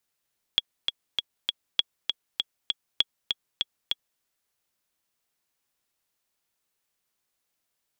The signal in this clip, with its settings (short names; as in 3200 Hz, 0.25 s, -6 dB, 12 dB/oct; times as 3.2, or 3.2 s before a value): metronome 198 bpm, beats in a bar 4, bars 3, 3340 Hz, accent 5 dB -7 dBFS